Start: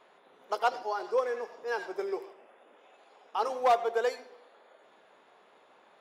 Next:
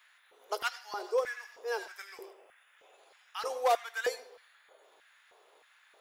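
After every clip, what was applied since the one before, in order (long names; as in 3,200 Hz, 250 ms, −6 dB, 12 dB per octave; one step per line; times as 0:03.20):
RIAA equalisation recording
auto-filter high-pass square 1.6 Hz 410–1,700 Hz
level −5 dB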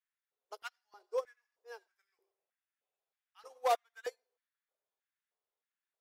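expander for the loud parts 2.5 to 1, over −45 dBFS
level −2 dB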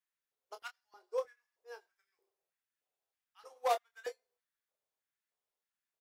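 double-tracking delay 25 ms −8.5 dB
level −1.5 dB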